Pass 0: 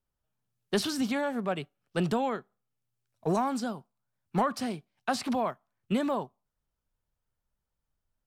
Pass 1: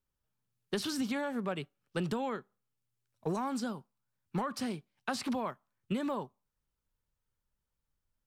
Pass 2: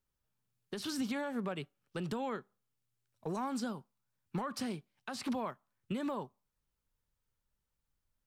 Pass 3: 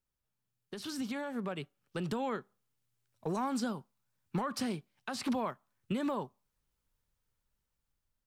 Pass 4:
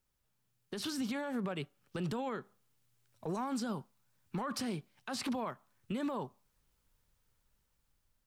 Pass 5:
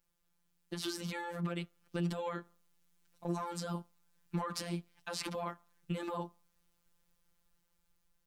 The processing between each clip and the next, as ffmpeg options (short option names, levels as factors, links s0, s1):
-af "equalizer=f=690:w=5.4:g=-8,acompressor=threshold=0.0398:ratio=6,volume=0.841"
-af "alimiter=level_in=1.5:limit=0.0631:level=0:latency=1:release=234,volume=0.668"
-af "dynaudnorm=f=630:g=5:m=2,volume=0.708"
-af "alimiter=level_in=3.76:limit=0.0631:level=0:latency=1:release=108,volume=0.266,volume=2.11"
-af "afftfilt=real='hypot(re,im)*cos(PI*b)':imag='0':win_size=1024:overlap=0.75,volume=1.5"